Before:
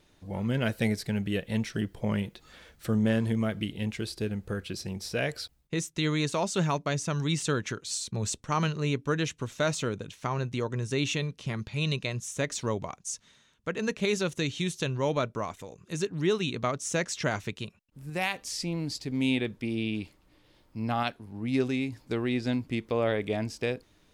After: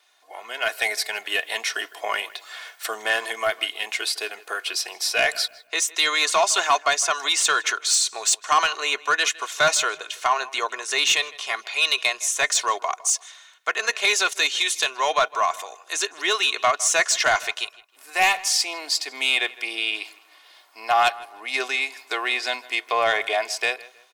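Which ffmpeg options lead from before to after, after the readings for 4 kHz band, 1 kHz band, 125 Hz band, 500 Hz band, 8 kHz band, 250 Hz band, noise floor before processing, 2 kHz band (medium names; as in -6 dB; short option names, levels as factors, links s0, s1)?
+14.0 dB, +13.0 dB, under -20 dB, +2.5 dB, +14.5 dB, -15.0 dB, -64 dBFS, +13.5 dB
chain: -filter_complex "[0:a]highpass=f=700:w=0.5412,highpass=f=700:w=1.3066,aecho=1:1:2.8:0.58,dynaudnorm=f=290:g=5:m=2.99,asoftclip=type=tanh:threshold=0.188,asplit=2[s0][s1];[s1]adelay=158,lowpass=f=3100:p=1,volume=0.112,asplit=2[s2][s3];[s3]adelay=158,lowpass=f=3100:p=1,volume=0.32,asplit=2[s4][s5];[s5]adelay=158,lowpass=f=3100:p=1,volume=0.32[s6];[s0][s2][s4][s6]amix=inputs=4:normalize=0,volume=1.68"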